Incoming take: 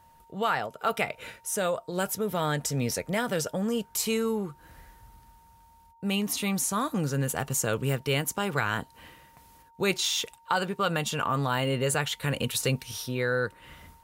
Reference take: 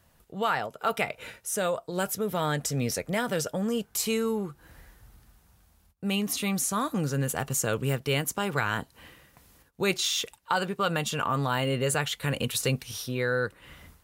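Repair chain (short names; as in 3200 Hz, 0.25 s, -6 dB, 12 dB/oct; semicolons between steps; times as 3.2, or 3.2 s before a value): notch 920 Hz, Q 30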